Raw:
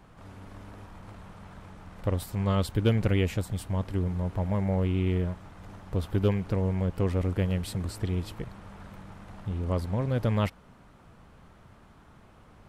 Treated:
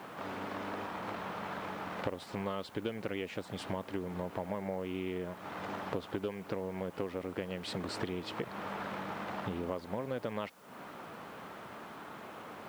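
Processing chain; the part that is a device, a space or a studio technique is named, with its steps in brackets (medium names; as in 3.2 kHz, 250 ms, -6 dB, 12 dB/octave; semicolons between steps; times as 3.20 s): baby monitor (band-pass 300–4200 Hz; compression 12:1, threshold -45 dBFS, peak gain reduction 23 dB; white noise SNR 27 dB); trim +12 dB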